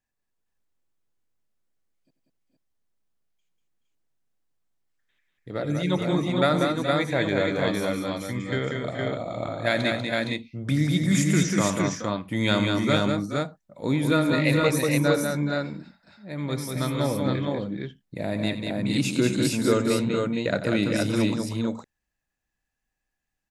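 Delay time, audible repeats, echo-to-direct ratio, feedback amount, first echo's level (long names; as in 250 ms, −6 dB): 90 ms, 4, 0.0 dB, repeats not evenly spaced, −13.5 dB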